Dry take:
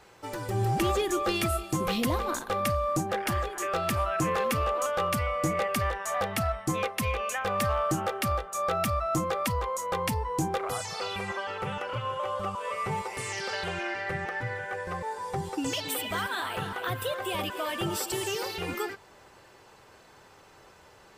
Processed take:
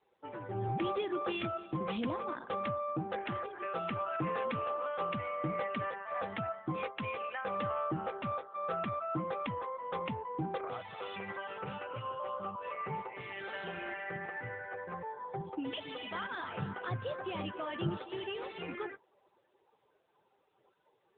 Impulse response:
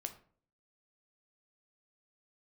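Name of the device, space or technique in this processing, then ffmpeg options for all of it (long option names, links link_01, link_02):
mobile call with aggressive noise cancelling: -filter_complex "[0:a]lowpass=frequency=5900:width=0.5412,lowpass=frequency=5900:width=1.3066,asettb=1/sr,asplit=3[link_01][link_02][link_03];[link_01]atrim=end=16.314[link_04];[link_02]atrim=start=16.31:end=17.98,asetpts=PTS-STARTPTS,afade=type=in:duration=0.004:curve=qsin,afade=type=out:start_time=1.666:duration=0.004:curve=qsin,bass=frequency=250:gain=9,treble=frequency=4000:gain=-5[link_05];[link_03]atrim=start=17.976[link_06];[link_04][link_05]acrossfade=duration=0.004:curve1=hsin:curve2=qsin[link_07];[link_07][link_06]acrossfade=duration=0.004:curve1=qsin:curve2=hsin,highpass=frequency=110:width=0.5412,highpass=frequency=110:width=1.3066,afftdn=noise_reduction=18:noise_floor=-46,volume=-6.5dB" -ar 8000 -c:a libopencore_amrnb -b:a 10200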